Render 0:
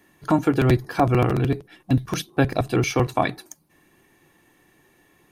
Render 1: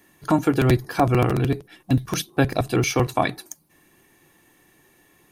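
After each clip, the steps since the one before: treble shelf 5.2 kHz +6.5 dB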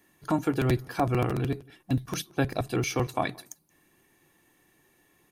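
echo from a far wall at 30 m, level -26 dB; trim -7 dB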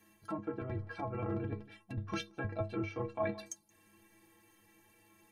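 low-pass that closes with the level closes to 1.4 kHz, closed at -24 dBFS; reverse; compression 10:1, threshold -32 dBFS, peak gain reduction 12 dB; reverse; inharmonic resonator 98 Hz, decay 0.36 s, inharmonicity 0.03; trim +10 dB

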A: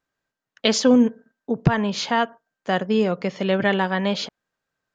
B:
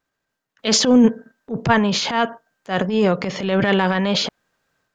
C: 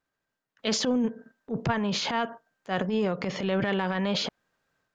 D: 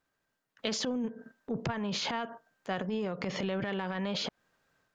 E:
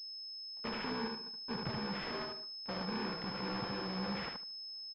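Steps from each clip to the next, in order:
transient shaper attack -11 dB, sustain +8 dB; trim +3.5 dB
compression 10:1, threshold -17 dBFS, peak gain reduction 9 dB; treble shelf 5.2 kHz -4.5 dB; trim -5 dB
compression, threshold -33 dBFS, peak gain reduction 12 dB; trim +2.5 dB
bit-reversed sample order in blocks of 64 samples; feedback delay 75 ms, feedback 18%, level -3.5 dB; class-D stage that switches slowly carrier 5.2 kHz; trim -5.5 dB

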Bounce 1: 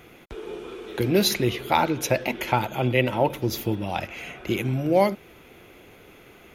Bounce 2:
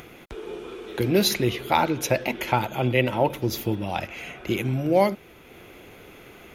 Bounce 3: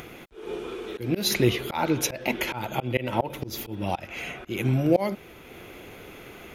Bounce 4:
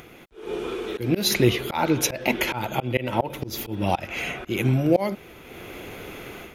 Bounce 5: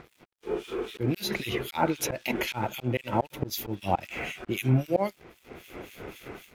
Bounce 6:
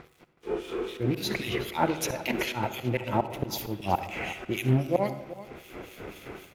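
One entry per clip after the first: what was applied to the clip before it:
upward compressor, threshold -40 dBFS
slow attack 221 ms; trim +2.5 dB
level rider gain up to 10 dB; trim -4 dB
in parallel at -2.5 dB: peak limiter -15.5 dBFS, peak gain reduction 10 dB; on the sum: harmonic tremolo 3.8 Hz, depth 100%, crossover 2.2 kHz; crossover distortion -48.5 dBFS; trim -3.5 dB
delay 373 ms -16.5 dB; reverberation RT60 0.95 s, pre-delay 53 ms, DRR 11 dB; loudspeaker Doppler distortion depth 0.31 ms

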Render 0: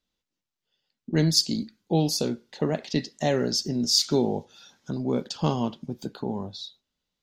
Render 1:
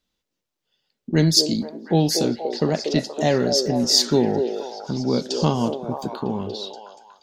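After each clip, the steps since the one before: repeats whose band climbs or falls 238 ms, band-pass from 470 Hz, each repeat 0.7 oct, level -2.5 dB; trim +4.5 dB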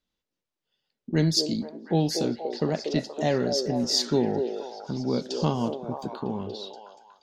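treble shelf 7.8 kHz -9.5 dB; trim -5 dB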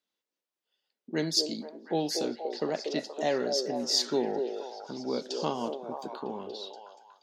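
high-pass 330 Hz 12 dB/octave; trim -2 dB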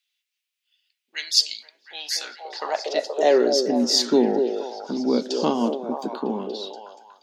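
high-pass sweep 2.5 kHz -> 230 Hz, 1.93–3.69 s; trim +6.5 dB

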